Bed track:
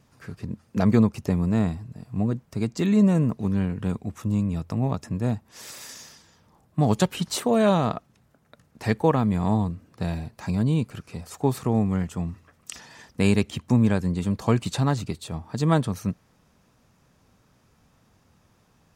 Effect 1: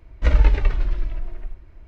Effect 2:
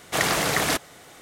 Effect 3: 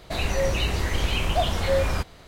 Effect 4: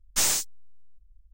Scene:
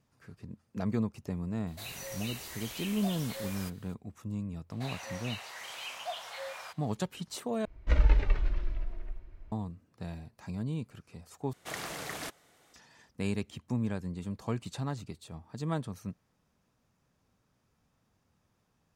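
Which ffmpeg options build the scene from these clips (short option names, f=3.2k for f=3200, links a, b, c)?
-filter_complex "[3:a]asplit=2[a][b];[0:a]volume=-12.5dB[c];[a]aemphasis=mode=production:type=riaa[d];[b]highpass=f=660:w=0.5412,highpass=f=660:w=1.3066[e];[1:a]aecho=1:1:244:0.168[f];[c]asplit=3[g][h][i];[g]atrim=end=7.654[j];[f]atrim=end=1.87,asetpts=PTS-STARTPTS,volume=-8dB[k];[h]atrim=start=9.516:end=11.534[l];[2:a]atrim=end=1.21,asetpts=PTS-STARTPTS,volume=-16.5dB[m];[i]atrim=start=12.736[n];[d]atrim=end=2.27,asetpts=PTS-STARTPTS,volume=-17.5dB,afade=t=in:d=0.004:c=hsin,afade=t=out:st=2.266:d=0.004:c=hsin,adelay=1670[o];[e]atrim=end=2.27,asetpts=PTS-STARTPTS,volume=-12dB,afade=t=in:d=0.004:c=hsin,afade=t=out:st=2.266:d=0.004:c=hsin,adelay=4700[p];[j][k]acrossfade=d=0.004:c1=hsin:c2=hsin[q];[q][l]acrossfade=d=0.004:c1=hsin:c2=hsin[r];[r][m]acrossfade=d=0.004:c1=hsin:c2=hsin[s];[s][n]acrossfade=d=0.004:c1=hsin:c2=hsin[t];[t][o][p]amix=inputs=3:normalize=0"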